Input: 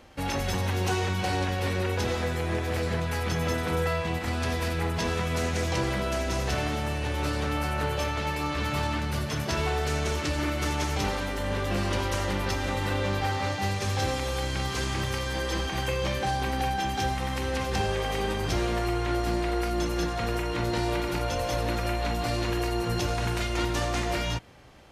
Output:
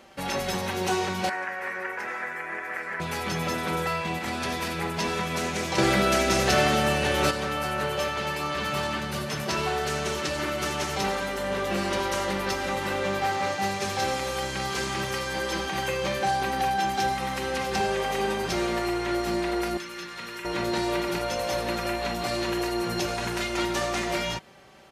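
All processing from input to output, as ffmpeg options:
ffmpeg -i in.wav -filter_complex "[0:a]asettb=1/sr,asplit=3[link_01][link_02][link_03];[link_01]atrim=end=1.294[link_04];[link_02]atrim=start=1.29:end=3,asetpts=PTS-STARTPTS,afade=type=in:duration=0.004:curve=qsin,afade=type=out:start_time=1.706:duration=0.004:curve=qsin,highpass=frequency=1400:poles=1,highshelf=frequency=2600:width_type=q:width=3:gain=-12[link_05];[link_03]atrim=start=2.996[link_06];[link_04][link_05]acrossfade=duration=0.004:curve1=hsin:curve2=qsin[link_07];[link_07][link_06]acrossfade=duration=0.004:curve1=qsin:curve2=hsin,asettb=1/sr,asplit=3[link_08][link_09][link_10];[link_08]atrim=end=5.784[link_11];[link_09]atrim=start=5.78:end=7.31,asetpts=PTS-STARTPTS,afade=type=in:duration=0.004:curve=qsin,afade=type=out:start_time=1.526:duration=0.004:curve=qsin,bandreject=frequency=1000:width=10,acontrast=80[link_12];[link_10]atrim=start=7.306[link_13];[link_11][link_12]acrossfade=duration=0.004:curve1=hsin:curve2=qsin[link_14];[link_14][link_13]acrossfade=duration=0.004:curve1=qsin:curve2=hsin,asettb=1/sr,asplit=3[link_15][link_16][link_17];[link_15]atrim=end=19.774[link_18];[link_16]atrim=start=19.77:end=20.45,asetpts=PTS-STARTPTS,afade=type=in:duration=0.004:curve=qsin,afade=type=out:start_time=0.676:duration=0.004:curve=qsin,highpass=96,equalizer=frequency=700:width_type=o:width=0.27:gain=-12,acrossover=split=1200|3600[link_19][link_20][link_21];[link_19]acompressor=threshold=-44dB:ratio=4[link_22];[link_20]acompressor=threshold=-39dB:ratio=4[link_23];[link_21]acompressor=threshold=-49dB:ratio=4[link_24];[link_22][link_23][link_24]amix=inputs=3:normalize=0[link_25];[link_17]atrim=start=20.446[link_26];[link_18][link_25]acrossfade=duration=0.004:curve1=hsin:curve2=qsin[link_27];[link_27][link_26]acrossfade=duration=0.004:curve1=qsin:curve2=hsin,highpass=frequency=210:poles=1,aecho=1:1:5.2:0.47,volume=1.5dB" out.wav

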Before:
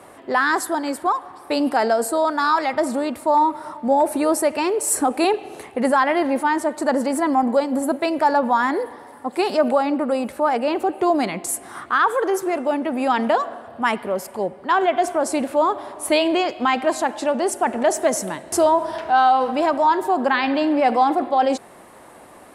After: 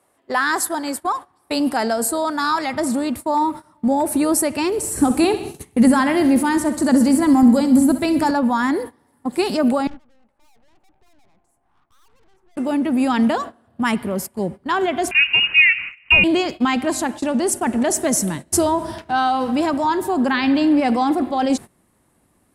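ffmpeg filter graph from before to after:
ffmpeg -i in.wav -filter_complex "[0:a]asettb=1/sr,asplit=3[link_01][link_02][link_03];[link_01]atrim=end=4.724[link_04];[link_02]atrim=start=4.72:end=8.31,asetpts=PTS-STARTPTS,afade=type=in:duration=0.004:curve=qsin,afade=type=out:start_time=3.586:duration=0.004:curve=qsin,acrossover=split=3200[link_05][link_06];[link_06]acompressor=threshold=-38dB:ratio=4:attack=1:release=60[link_07];[link_05][link_07]amix=inputs=2:normalize=0,bass=frequency=250:gain=7,treble=frequency=4000:gain=7,aecho=1:1:65|130|195|260|325|390:0.224|0.132|0.0779|0.046|0.0271|0.016,atrim=end_sample=158319[link_08];[link_03]atrim=start=8.306[link_09];[link_04][link_08]acrossfade=duration=0.004:curve1=hsin:curve2=qsin[link_10];[link_10][link_09]acrossfade=duration=0.004:curve1=qsin:curve2=hsin,asettb=1/sr,asplit=3[link_11][link_12][link_13];[link_11]atrim=end=9.874[link_14];[link_12]atrim=start=9.87:end=12.57,asetpts=PTS-STARTPTS,afade=type=in:duration=0.004:curve=qsin,afade=type=out:start_time=2.696:duration=0.004:curve=qsin,bandpass=frequency=850:width_type=q:width=2.7,aeval=exprs='(tanh(89.1*val(0)+0.35)-tanh(0.35))/89.1':channel_layout=same[link_15];[link_13]atrim=start=12.566[link_16];[link_14][link_15]acrossfade=duration=0.004:curve1=hsin:curve2=qsin[link_17];[link_17][link_16]acrossfade=duration=0.004:curve1=qsin:curve2=hsin,asettb=1/sr,asplit=3[link_18][link_19][link_20];[link_18]atrim=end=15.114[link_21];[link_19]atrim=start=15.11:end=16.24,asetpts=PTS-STARTPTS,afade=type=in:duration=0.004:curve=qsin,afade=type=out:start_time=1.126:duration=0.004:curve=qsin,acontrast=25,lowpass=frequency=2600:width_type=q:width=0.5098,lowpass=frequency=2600:width_type=q:width=0.6013,lowpass=frequency=2600:width_type=q:width=0.9,lowpass=frequency=2600:width_type=q:width=2.563,afreqshift=-3100[link_22];[link_20]atrim=start=16.236[link_23];[link_21][link_22]acrossfade=duration=0.004:curve1=hsin:curve2=qsin[link_24];[link_24][link_23]acrossfade=duration=0.004:curve1=qsin:curve2=hsin,asubboost=boost=6:cutoff=230,agate=range=-19dB:threshold=-28dB:ratio=16:detection=peak,highshelf=frequency=5000:gain=10,volume=-1dB" out.wav

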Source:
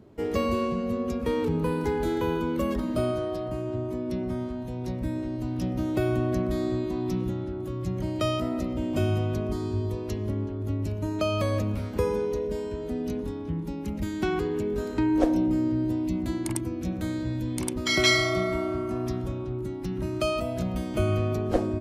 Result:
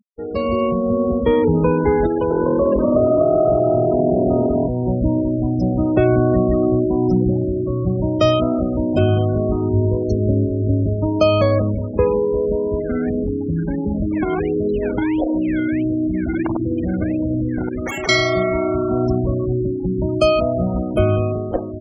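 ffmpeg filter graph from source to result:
ffmpeg -i in.wav -filter_complex "[0:a]asettb=1/sr,asplit=3[link_01][link_02][link_03];[link_01]atrim=end=2.064[link_04];[link_02]atrim=start=2.06:end=4.68,asetpts=PTS-STARTPTS,afade=type=in:duration=0.004:curve=qsin,afade=type=out:start_time=2.616:duration=0.004:curve=qsin,equalizer=frequency=570:width_type=o:width=0.42:gain=6.5,acompressor=threshold=-26dB:ratio=12:attack=3.2:release=140:knee=1:detection=peak,asplit=6[link_05][link_06][link_07][link_08][link_09][link_10];[link_06]adelay=247,afreqshift=41,volume=-4dB[link_11];[link_07]adelay=494,afreqshift=82,volume=-12.9dB[link_12];[link_08]adelay=741,afreqshift=123,volume=-21.7dB[link_13];[link_09]adelay=988,afreqshift=164,volume=-30.6dB[link_14];[link_10]adelay=1235,afreqshift=205,volume=-39.5dB[link_15];[link_05][link_11][link_12][link_13][link_14][link_15]amix=inputs=6:normalize=0,atrim=end_sample=115542[link_16];[link_03]atrim=start=4.676[link_17];[link_04][link_16]acrossfade=duration=0.004:curve1=hsin:curve2=qsin[link_18];[link_18][link_17]acrossfade=duration=0.004:curve1=qsin:curve2=hsin,asettb=1/sr,asplit=3[link_19][link_20][link_21];[link_19]atrim=end=12.804[link_22];[link_20]atrim=start=12.8:end=18.09,asetpts=PTS-STARTPTS,afade=type=in:duration=0.004:curve=qsin,afade=type=out:start_time=5.286:duration=0.004:curve=qsin,bandreject=frequency=60:width_type=h:width=6,bandreject=frequency=120:width_type=h:width=6,bandreject=frequency=180:width_type=h:width=6,bandreject=frequency=240:width_type=h:width=6,bandreject=frequency=300:width_type=h:width=6,bandreject=frequency=360:width_type=h:width=6,bandreject=frequency=420:width_type=h:width=6,bandreject=frequency=480:width_type=h:width=6,bandreject=frequency=540:width_type=h:width=6,acompressor=threshold=-28dB:ratio=16:attack=3.2:release=140:knee=1:detection=peak,acrusher=samples=17:mix=1:aa=0.000001:lfo=1:lforange=17:lforate=1.5[link_23];[link_21]atrim=start=18.086[link_24];[link_22][link_23]acrossfade=duration=0.004:curve1=hsin:curve2=qsin[link_25];[link_25][link_24]acrossfade=duration=0.004:curve1=qsin:curve2=hsin,equalizer=frequency=590:width_type=o:width=0.78:gain=4,afftfilt=real='re*gte(hypot(re,im),0.0282)':imag='im*gte(hypot(re,im),0.0282)':win_size=1024:overlap=0.75,dynaudnorm=framelen=140:gausssize=7:maxgain=14.5dB,volume=-2dB" out.wav

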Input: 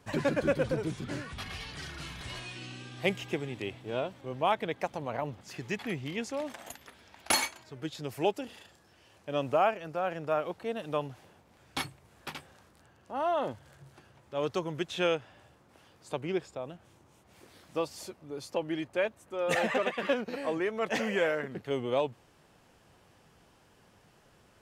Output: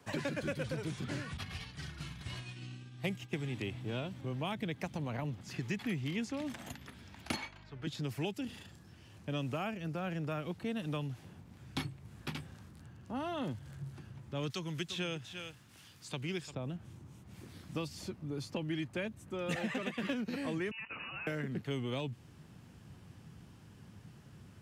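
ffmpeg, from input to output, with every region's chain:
ffmpeg -i in.wav -filter_complex "[0:a]asettb=1/sr,asplit=3[link_01][link_02][link_03];[link_01]atrim=end=1.374[link_04];[link_02]atrim=start=1.37:end=3.37,asetpts=PTS-STARTPTS,afade=type=in:duration=0.004:curve=qsin,afade=type=out:start_time=1.996:duration=0.004:curve=qsin,agate=range=-33dB:threshold=-37dB:ratio=3:release=100:detection=peak,acompressor=mode=upward:threshold=-57dB:ratio=2.5:attack=3.2:release=140:knee=2.83:detection=peak[link_05];[link_03]atrim=start=3.366[link_06];[link_04][link_05]acrossfade=duration=0.004:curve1=hsin:curve2=qsin[link_07];[link_07][link_06]acrossfade=duration=0.004:curve1=qsin:curve2=hsin,asettb=1/sr,asplit=3[link_08][link_09][link_10];[link_08]atrim=end=7.364[link_11];[link_09]atrim=start=7.36:end=7.87,asetpts=PTS-STARTPTS,afade=type=in:duration=0.004:curve=qsin,afade=type=out:start_time=0.506:duration=0.004:curve=qsin,acrossover=split=480 4700:gain=0.224 1 0.224[link_12][link_13][link_14];[link_12][link_13][link_14]amix=inputs=3:normalize=0,aeval=exprs='val(0)+0.000562*(sin(2*PI*50*n/s)+sin(2*PI*2*50*n/s)/2+sin(2*PI*3*50*n/s)/3+sin(2*PI*4*50*n/s)/4+sin(2*PI*5*50*n/s)/5)':channel_layout=same[link_15];[link_10]atrim=start=7.866[link_16];[link_11][link_15]acrossfade=duration=0.004:curve1=hsin:curve2=qsin[link_17];[link_17][link_16]acrossfade=duration=0.004:curve1=qsin:curve2=hsin,asettb=1/sr,asplit=3[link_18][link_19][link_20];[link_18]atrim=end=14.504[link_21];[link_19]atrim=start=14.5:end=16.53,asetpts=PTS-STARTPTS,afade=type=in:duration=0.004:curve=qsin,afade=type=out:start_time=2.026:duration=0.004:curve=qsin,tiltshelf=frequency=1400:gain=-9,aecho=1:1:346:0.188,atrim=end_sample=89523[link_22];[link_20]atrim=start=16.526[link_23];[link_21][link_22]acrossfade=duration=0.004:curve1=hsin:curve2=qsin[link_24];[link_24][link_23]acrossfade=duration=0.004:curve1=qsin:curve2=hsin,asettb=1/sr,asplit=3[link_25][link_26][link_27];[link_25]atrim=end=20.714[link_28];[link_26]atrim=start=20.71:end=21.27,asetpts=PTS-STARTPTS,afade=type=in:duration=0.004:curve=qsin,afade=type=out:start_time=0.556:duration=0.004:curve=qsin,highpass=frequency=640:poles=1,acompressor=threshold=-38dB:ratio=5:attack=3.2:release=140:knee=1:detection=peak,lowpass=frequency=2600:width_type=q:width=0.5098,lowpass=frequency=2600:width_type=q:width=0.6013,lowpass=frequency=2600:width_type=q:width=0.9,lowpass=frequency=2600:width_type=q:width=2.563,afreqshift=-3100[link_29];[link_27]atrim=start=21.266[link_30];[link_28][link_29]acrossfade=duration=0.004:curve1=hsin:curve2=qsin[link_31];[link_31][link_30]acrossfade=duration=0.004:curve1=qsin:curve2=hsin,highpass=100,asubboost=boost=8:cutoff=190,acrossover=split=280|790|1600|5400[link_32][link_33][link_34][link_35][link_36];[link_32]acompressor=threshold=-40dB:ratio=4[link_37];[link_33]acompressor=threshold=-41dB:ratio=4[link_38];[link_34]acompressor=threshold=-53dB:ratio=4[link_39];[link_35]acompressor=threshold=-42dB:ratio=4[link_40];[link_36]acompressor=threshold=-56dB:ratio=4[link_41];[link_37][link_38][link_39][link_40][link_41]amix=inputs=5:normalize=0" out.wav

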